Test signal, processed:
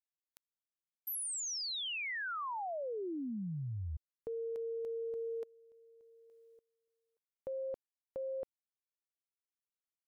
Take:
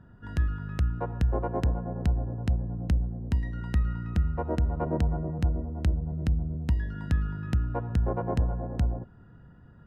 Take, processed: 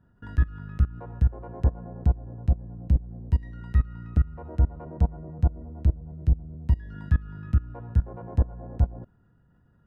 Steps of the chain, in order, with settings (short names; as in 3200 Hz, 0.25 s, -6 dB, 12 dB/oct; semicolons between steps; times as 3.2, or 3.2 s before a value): level quantiser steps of 23 dB; gain +7 dB